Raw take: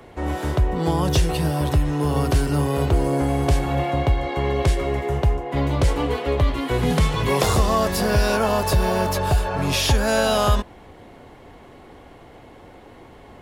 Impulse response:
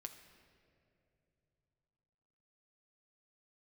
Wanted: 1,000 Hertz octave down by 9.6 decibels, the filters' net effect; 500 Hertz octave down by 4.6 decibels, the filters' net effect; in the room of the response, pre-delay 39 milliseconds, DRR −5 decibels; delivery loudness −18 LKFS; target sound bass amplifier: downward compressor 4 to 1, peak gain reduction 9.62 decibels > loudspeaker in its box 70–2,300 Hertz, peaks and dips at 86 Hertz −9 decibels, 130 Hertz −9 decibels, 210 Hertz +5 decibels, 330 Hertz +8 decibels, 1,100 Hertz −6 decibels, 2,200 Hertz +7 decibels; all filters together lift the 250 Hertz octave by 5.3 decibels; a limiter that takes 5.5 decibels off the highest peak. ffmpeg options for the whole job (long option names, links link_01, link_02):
-filter_complex "[0:a]equalizer=frequency=250:width_type=o:gain=5.5,equalizer=frequency=500:width_type=o:gain=-9,equalizer=frequency=1000:width_type=o:gain=-7.5,alimiter=limit=-12.5dB:level=0:latency=1,asplit=2[link_01][link_02];[1:a]atrim=start_sample=2205,adelay=39[link_03];[link_02][link_03]afir=irnorm=-1:irlink=0,volume=10dB[link_04];[link_01][link_04]amix=inputs=2:normalize=0,acompressor=threshold=-19dB:ratio=4,highpass=frequency=70:width=0.5412,highpass=frequency=70:width=1.3066,equalizer=frequency=86:width_type=q:width=4:gain=-9,equalizer=frequency=130:width_type=q:width=4:gain=-9,equalizer=frequency=210:width_type=q:width=4:gain=5,equalizer=frequency=330:width_type=q:width=4:gain=8,equalizer=frequency=1100:width_type=q:width=4:gain=-6,equalizer=frequency=2200:width_type=q:width=4:gain=7,lowpass=frequency=2300:width=0.5412,lowpass=frequency=2300:width=1.3066,volume=5.5dB"